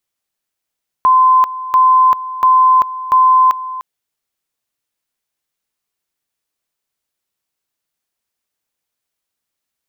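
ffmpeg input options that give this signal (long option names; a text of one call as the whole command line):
ffmpeg -f lavfi -i "aevalsrc='pow(10,(-6-15.5*gte(mod(t,0.69),0.39))/20)*sin(2*PI*1030*t)':duration=2.76:sample_rate=44100" out.wav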